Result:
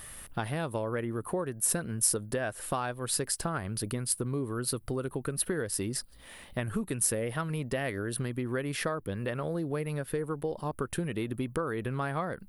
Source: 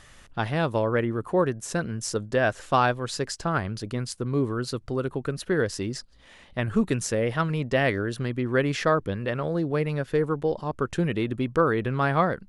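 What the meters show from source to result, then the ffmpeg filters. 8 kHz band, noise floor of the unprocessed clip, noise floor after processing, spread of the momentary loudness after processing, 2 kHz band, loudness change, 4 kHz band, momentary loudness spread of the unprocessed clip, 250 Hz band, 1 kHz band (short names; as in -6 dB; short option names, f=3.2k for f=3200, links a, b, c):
+6.5 dB, -51 dBFS, -52 dBFS, 6 LU, -8.5 dB, -6.0 dB, -4.5 dB, 7 LU, -7.0 dB, -9.5 dB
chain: -af "acompressor=threshold=-31dB:ratio=6,aexciter=amount=10.9:drive=5.5:freq=9.3k,volume=1.5dB"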